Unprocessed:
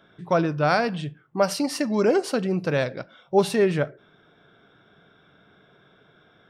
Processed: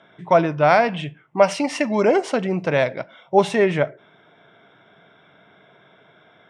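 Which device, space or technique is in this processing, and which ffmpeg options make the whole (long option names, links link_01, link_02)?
car door speaker: -filter_complex "[0:a]asettb=1/sr,asplit=3[link_01][link_02][link_03];[link_01]atrim=end=0.894[link_04];[link_02]atrim=start=0.89:end=1.97,asetpts=PTS-STARTPTS,afade=type=in:duration=0.004:curve=qsin,afade=type=out:start_time=1.076:duration=0.004:curve=qsin,equalizer=frequency=2600:width_type=o:width=0.43:gain=6[link_05];[link_03]atrim=start=1.966[link_06];[link_04][link_05]acrossfade=duration=0.004:curve1=hsin:curve2=qsin[link_07];[link_07][link_06]acrossfade=duration=0.004:curve1=qsin:curve2=hsin,highpass=100,equalizer=frequency=650:width_type=q:width=4:gain=7,equalizer=frequency=930:width_type=q:width=4:gain=7,equalizer=frequency=2100:width_type=q:width=4:gain=9,equalizer=frequency=3200:width_type=q:width=4:gain=4,equalizer=frequency=4500:width_type=q:width=4:gain=-8,lowpass=frequency=8400:width=0.5412,lowpass=frequency=8400:width=1.3066,volume=1.5dB"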